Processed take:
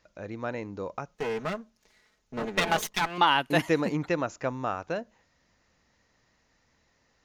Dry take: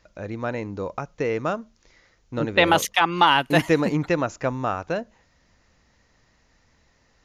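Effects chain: 1.14–3.18 minimum comb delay 4.7 ms; low shelf 84 Hz -8.5 dB; gain -5 dB

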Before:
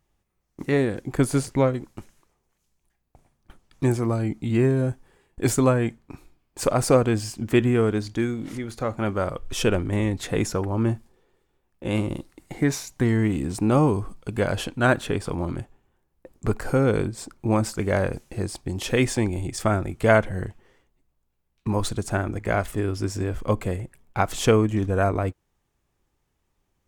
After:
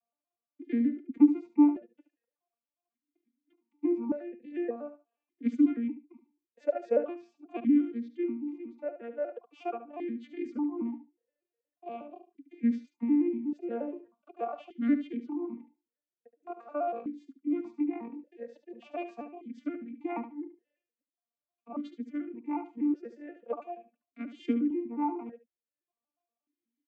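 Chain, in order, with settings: arpeggiated vocoder major triad, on A#3, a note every 0.12 s; reverb removal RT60 0.71 s; dynamic EQ 1200 Hz, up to +6 dB, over -40 dBFS, Q 0.71; feedback echo 72 ms, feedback 17%, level -11 dB; vowel sequencer 1.7 Hz

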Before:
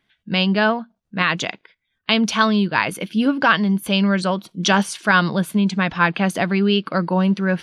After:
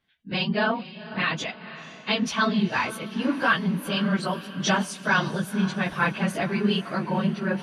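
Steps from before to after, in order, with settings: phase scrambler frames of 50 ms; diffused feedback echo 0.506 s, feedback 52%, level -14.5 dB; gain -6.5 dB

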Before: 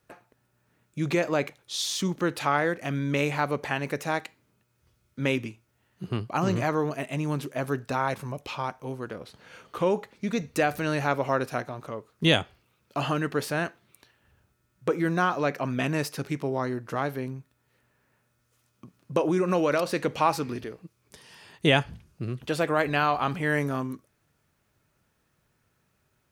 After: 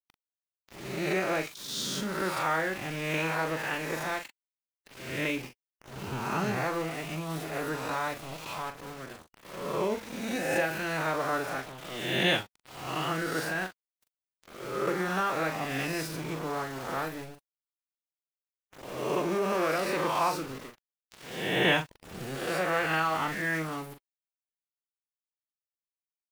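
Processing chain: spectral swells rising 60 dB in 1.34 s; dynamic EQ 1900 Hz, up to +3 dB, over -32 dBFS, Q 0.81; sample gate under -30 dBFS; doubler 41 ms -8 dB; formant-preserving pitch shift +1.5 st; gain -8 dB

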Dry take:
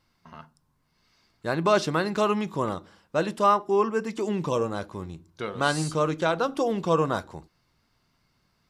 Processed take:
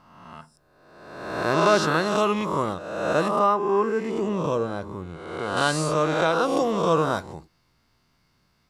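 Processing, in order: spectral swells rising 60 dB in 1.18 s; 3.28–5.57 high shelf 2100 Hz -9 dB

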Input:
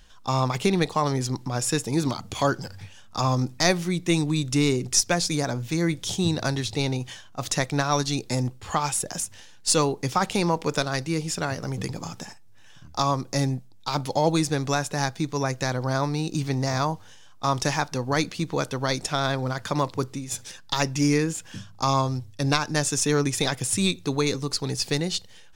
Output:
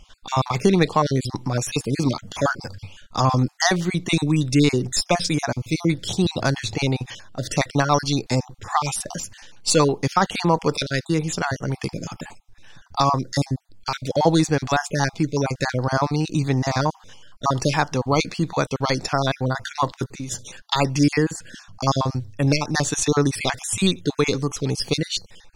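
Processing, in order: random spectral dropouts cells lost 34%; high shelf 10000 Hz -12 dB; gain +5.5 dB

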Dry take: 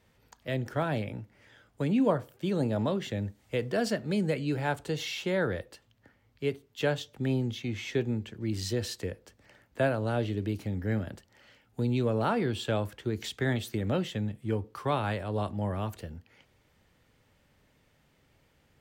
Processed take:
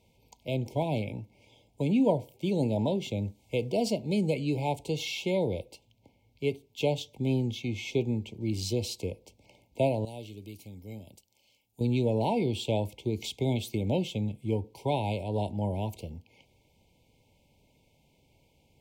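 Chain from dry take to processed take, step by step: brick-wall FIR band-stop 1000–2100 Hz; 10.05–11.81 pre-emphasis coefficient 0.8; gain +1 dB

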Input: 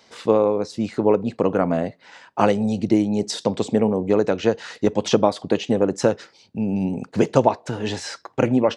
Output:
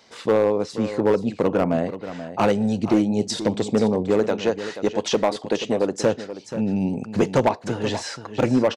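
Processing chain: 4.21–5.98 low shelf 200 Hz -10 dB; hard clip -11.5 dBFS, distortion -14 dB; echo 0.481 s -12 dB

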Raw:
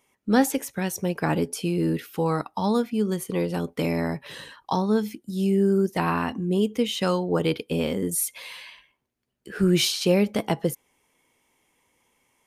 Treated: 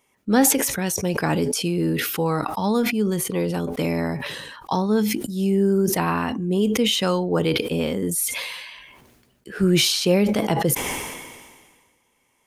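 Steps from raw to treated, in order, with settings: 0.86–1.68 bell 5900 Hz +5 dB 1.6 oct; sustainer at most 36 dB/s; gain +1.5 dB

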